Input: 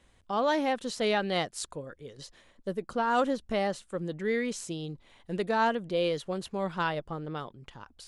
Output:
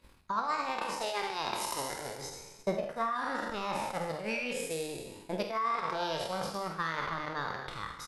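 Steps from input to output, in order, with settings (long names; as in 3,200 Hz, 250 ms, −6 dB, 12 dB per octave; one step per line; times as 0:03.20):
peak hold with a decay on every bin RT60 1.67 s
parametric band 890 Hz +9.5 dB 0.22 octaves
reversed playback
downward compressor 6 to 1, threshold −31 dBFS, peak gain reduction 15.5 dB
reversed playback
transient designer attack +9 dB, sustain −11 dB
flanger 0.29 Hz, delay 0.6 ms, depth 2.7 ms, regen −62%
formants moved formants +4 semitones
on a send: ambience of single reflections 49 ms −9.5 dB, 74 ms −12 dB
on the sum: level +2.5 dB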